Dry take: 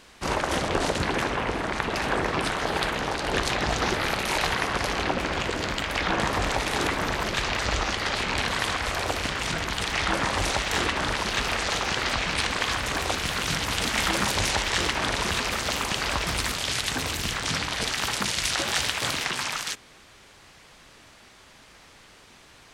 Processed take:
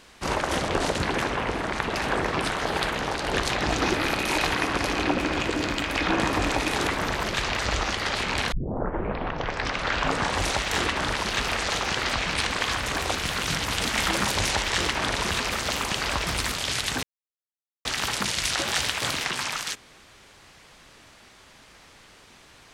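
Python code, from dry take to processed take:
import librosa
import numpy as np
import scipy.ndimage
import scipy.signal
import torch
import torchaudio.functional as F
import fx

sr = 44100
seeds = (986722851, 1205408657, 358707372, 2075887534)

y = fx.small_body(x, sr, hz=(300.0, 2500.0), ring_ms=45, db=9, at=(3.64, 6.74))
y = fx.edit(y, sr, fx.tape_start(start_s=8.52, length_s=1.92),
    fx.silence(start_s=17.03, length_s=0.82), tone=tone)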